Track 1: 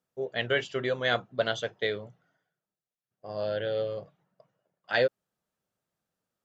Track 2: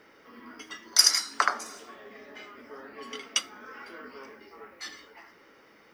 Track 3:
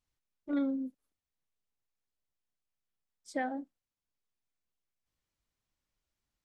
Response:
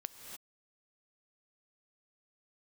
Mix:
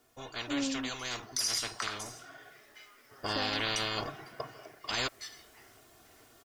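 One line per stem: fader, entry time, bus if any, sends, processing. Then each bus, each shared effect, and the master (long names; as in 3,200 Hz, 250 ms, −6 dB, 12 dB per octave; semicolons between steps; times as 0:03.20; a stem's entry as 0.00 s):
0:02.24 −11 dB → 0:02.49 −2.5 dB, 0.00 s, no send, comb filter 2.8 ms, depth 89%; every bin compressed towards the loudest bin 10 to 1
+0.5 dB, 0.40 s, no send, first-order pre-emphasis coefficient 0.8; noise gate with hold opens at −56 dBFS; meter weighting curve A
−2.5 dB, 0.00 s, no send, no processing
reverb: not used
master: brickwall limiter −21 dBFS, peak gain reduction 15 dB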